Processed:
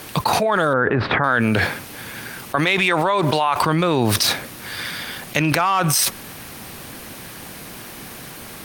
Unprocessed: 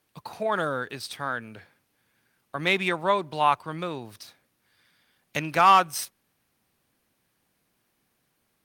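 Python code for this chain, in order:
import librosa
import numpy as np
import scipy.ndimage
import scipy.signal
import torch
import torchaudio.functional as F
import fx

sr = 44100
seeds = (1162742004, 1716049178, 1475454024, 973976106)

y = fx.lowpass(x, sr, hz=1700.0, slope=24, at=(0.73, 1.24))
y = fx.low_shelf(y, sr, hz=300.0, db=-9.5, at=(2.55, 3.62))
y = fx.env_flatten(y, sr, amount_pct=100)
y = F.gain(torch.from_numpy(y), -3.5).numpy()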